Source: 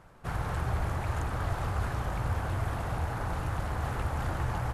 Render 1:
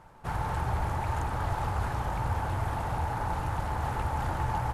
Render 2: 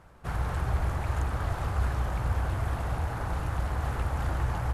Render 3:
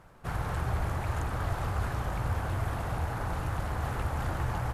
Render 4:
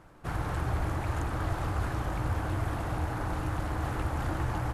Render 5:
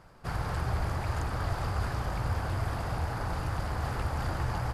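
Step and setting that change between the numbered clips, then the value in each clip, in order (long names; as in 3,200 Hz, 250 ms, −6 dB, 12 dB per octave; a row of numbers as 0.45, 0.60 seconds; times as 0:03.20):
parametric band, centre frequency: 880, 62, 15,000, 310, 4,800 Hertz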